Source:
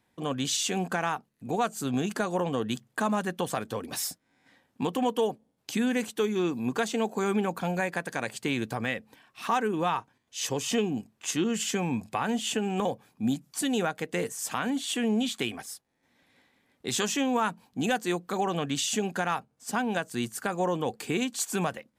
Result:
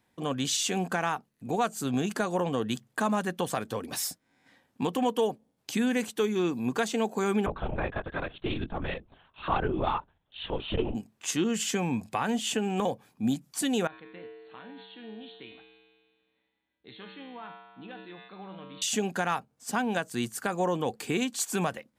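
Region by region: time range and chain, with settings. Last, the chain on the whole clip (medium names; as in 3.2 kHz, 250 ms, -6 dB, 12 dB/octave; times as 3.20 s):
7.46–10.95 s: peaking EQ 2.1 kHz -12.5 dB 0.31 oct + LPC vocoder at 8 kHz whisper + transformer saturation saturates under 100 Hz
13.87–18.82 s: brick-wall FIR low-pass 4.4 kHz + feedback comb 64 Hz, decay 1.8 s, harmonics odd, mix 90% + decay stretcher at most 57 dB/s
whole clip: none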